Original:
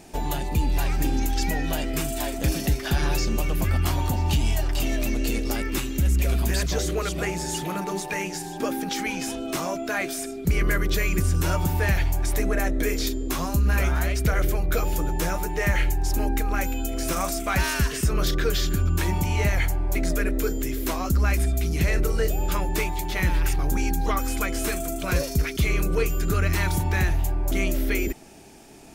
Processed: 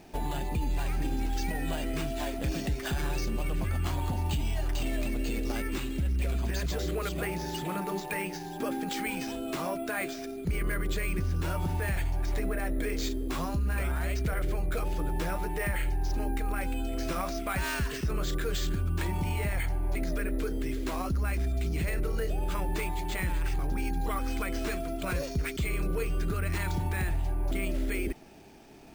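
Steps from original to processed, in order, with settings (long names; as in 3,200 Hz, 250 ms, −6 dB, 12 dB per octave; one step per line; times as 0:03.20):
bad sample-rate conversion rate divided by 4×, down filtered, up hold
brickwall limiter −18.5 dBFS, peak gain reduction 5.5 dB
level −4 dB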